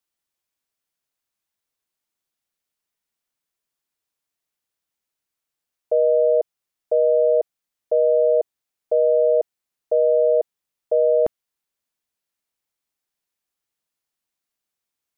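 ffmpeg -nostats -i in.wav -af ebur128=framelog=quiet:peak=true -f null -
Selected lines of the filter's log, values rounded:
Integrated loudness:
  I:         -19.4 LUFS
  Threshold: -29.9 LUFS
Loudness range:
  LRA:         6.3 LU
  Threshold: -41.9 LUFS
  LRA low:   -26.6 LUFS
  LRA high:  -20.3 LUFS
True peak:
  Peak:      -10.6 dBFS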